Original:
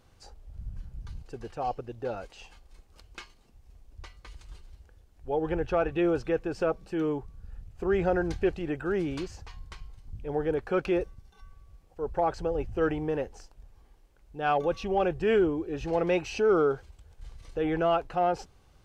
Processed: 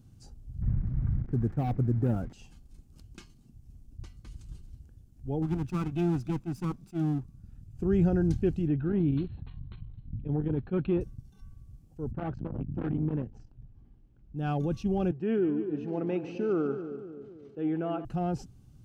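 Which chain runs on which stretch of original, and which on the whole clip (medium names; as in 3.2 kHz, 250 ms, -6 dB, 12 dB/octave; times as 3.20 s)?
0.62–2.33 s: one-bit delta coder 64 kbps, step -47 dBFS + steep low-pass 2.2 kHz 72 dB/octave + waveshaping leveller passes 2
5.42–7.73 s: comb filter that takes the minimum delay 0.81 ms + bass shelf 180 Hz -9 dB + loudspeaker Doppler distortion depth 0.1 ms
8.67–11.01 s: brick-wall FIR low-pass 4.3 kHz + transformer saturation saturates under 350 Hz
12.11–14.38 s: low-pass 2.7 kHz + transformer saturation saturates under 810 Hz
15.11–18.05 s: band-pass 300–2400 Hz + two-band feedback delay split 630 Hz, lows 258 ms, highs 145 ms, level -10 dB
whole clip: ten-band graphic EQ 125 Hz +12 dB, 250 Hz +9 dB, 500 Hz -10 dB, 1 kHz -9 dB, 2 kHz -10 dB, 4 kHz -6 dB; attacks held to a fixed rise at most 510 dB/s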